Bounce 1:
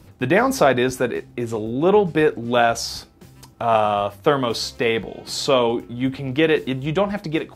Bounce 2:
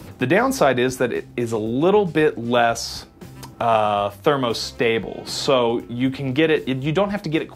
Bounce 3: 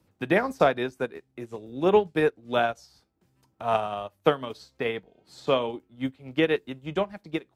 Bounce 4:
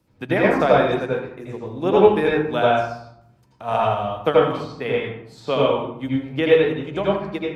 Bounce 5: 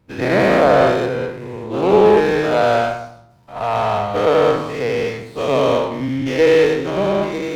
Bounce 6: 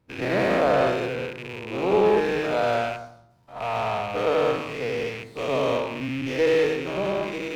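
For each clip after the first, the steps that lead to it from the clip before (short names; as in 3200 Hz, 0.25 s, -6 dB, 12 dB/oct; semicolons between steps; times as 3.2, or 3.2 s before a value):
three-band squash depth 40%
upward expander 2.5:1, over -30 dBFS; gain -1.5 dB
reverb RT60 0.70 s, pre-delay 78 ms, DRR -5 dB
spectral dilation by 0.24 s; running maximum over 5 samples; gain -3 dB
rattling part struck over -33 dBFS, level -17 dBFS; notches 50/100/150/200 Hz; gain -8 dB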